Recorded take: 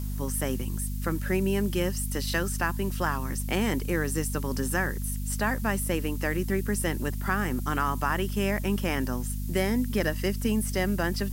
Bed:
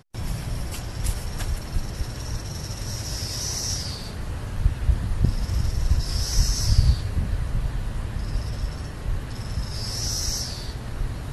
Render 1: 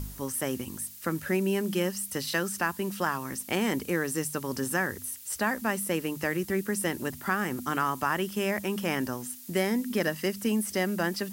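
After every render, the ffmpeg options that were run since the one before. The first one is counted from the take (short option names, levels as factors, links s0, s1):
-af "bandreject=f=50:t=h:w=4,bandreject=f=100:t=h:w=4,bandreject=f=150:t=h:w=4,bandreject=f=200:t=h:w=4,bandreject=f=250:t=h:w=4"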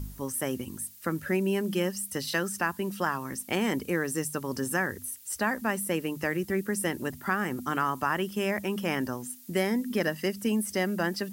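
-af "afftdn=nr=6:nf=-45"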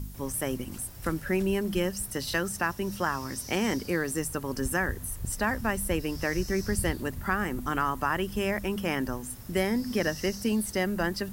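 -filter_complex "[1:a]volume=0.178[s0];[0:a][s0]amix=inputs=2:normalize=0"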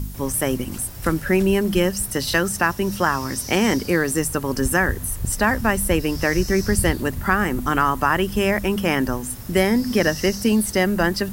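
-af "volume=2.82"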